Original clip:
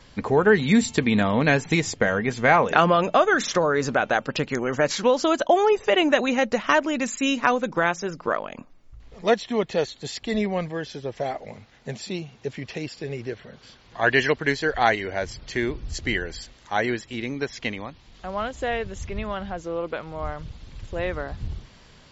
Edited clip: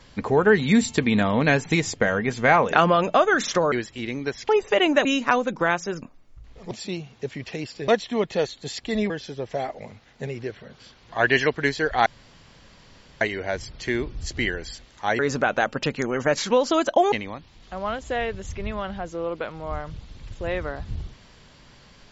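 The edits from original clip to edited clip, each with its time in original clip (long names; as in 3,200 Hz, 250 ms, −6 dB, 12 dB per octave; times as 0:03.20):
0:03.72–0:05.65: swap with 0:16.87–0:17.64
0:06.21–0:07.21: remove
0:08.18–0:08.58: remove
0:10.49–0:10.76: remove
0:11.93–0:13.10: move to 0:09.27
0:14.89: splice in room tone 1.15 s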